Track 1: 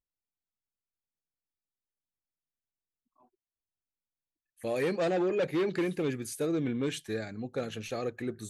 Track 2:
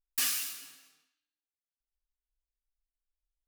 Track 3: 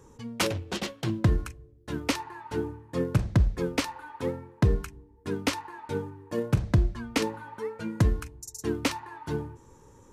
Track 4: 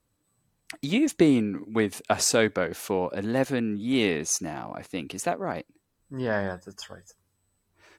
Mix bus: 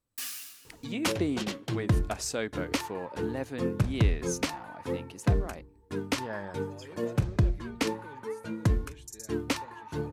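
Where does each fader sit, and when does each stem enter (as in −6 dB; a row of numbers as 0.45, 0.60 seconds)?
−18.5, −7.5, −2.5, −10.5 decibels; 2.05, 0.00, 0.65, 0.00 seconds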